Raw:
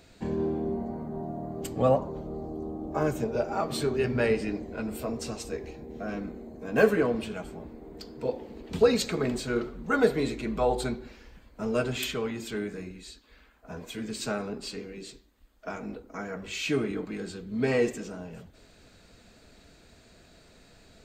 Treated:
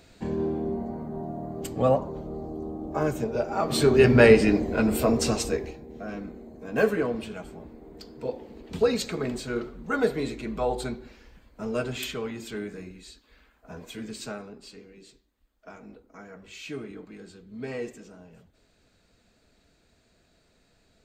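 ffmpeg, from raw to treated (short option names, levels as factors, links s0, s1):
-af "volume=3.35,afade=t=in:st=3.55:d=0.5:silence=0.334965,afade=t=out:st=5.36:d=0.44:silence=0.251189,afade=t=out:st=14.03:d=0.48:silence=0.421697"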